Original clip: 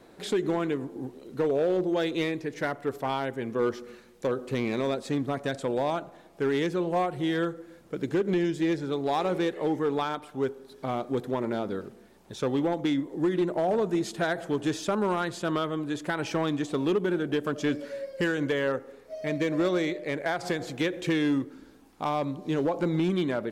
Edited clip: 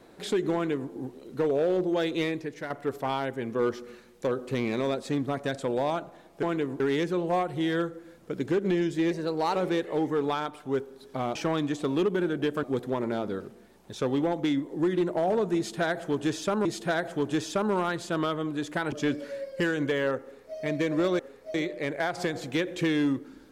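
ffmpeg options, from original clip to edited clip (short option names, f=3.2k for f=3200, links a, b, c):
-filter_complex "[0:a]asplit=12[a][b][c][d][e][f][g][h][i][j][k][l];[a]atrim=end=2.7,asetpts=PTS-STARTPTS,afade=t=out:st=2.36:d=0.34:silence=0.354813[m];[b]atrim=start=2.7:end=6.432,asetpts=PTS-STARTPTS,afade=t=in:d=0.004:c=hsin:silence=0.354813[n];[c]atrim=start=0.538:end=0.912[o];[d]atrim=start=6.428:end=8.744[p];[e]atrim=start=8.74:end=9.24,asetpts=PTS-STARTPTS,asetrate=49833,aresample=44100,atrim=end_sample=19513,asetpts=PTS-STARTPTS[q];[f]atrim=start=9.236:end=11.042[r];[g]atrim=start=16.248:end=17.532[s];[h]atrim=start=11.038:end=15.062[t];[i]atrim=start=13.978:end=16.252[u];[j]atrim=start=17.528:end=19.802[v];[k]atrim=start=18.828:end=19.182[w];[l]atrim=start=19.798[x];[m][n]concat=n=2:v=0:a=1[y];[y][o]acrossfade=d=0.004:c1=hsin:c2=hsin[z];[z][p]acrossfade=d=0.004:c1=hsin:c2=hsin[aa];[aa][q]acrossfade=d=0.004:c1=hsin:c2=hsin[ab];[ab][r]acrossfade=d=0.004:c1=hsin:c2=hsin[ac];[ac][s]acrossfade=d=0.004:c1=hsin:c2=hsin[ad];[ad][t]acrossfade=d=0.004:c1=hsin:c2=hsin[ae];[ae][u]acrossfade=d=0.004:c1=hsin:c2=hsin[af];[af][v]acrossfade=d=0.004:c1=hsin:c2=hsin[ag];[ag][w]acrossfade=d=0.004:c1=hsin:c2=hsin[ah];[ah][x]acrossfade=d=0.004:c1=hsin:c2=hsin"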